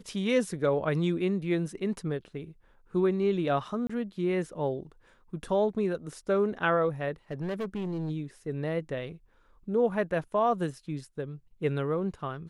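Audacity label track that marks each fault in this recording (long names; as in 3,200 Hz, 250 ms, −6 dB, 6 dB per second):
3.870000	3.900000	drop-out 25 ms
7.310000	8.110000	clipping −29 dBFS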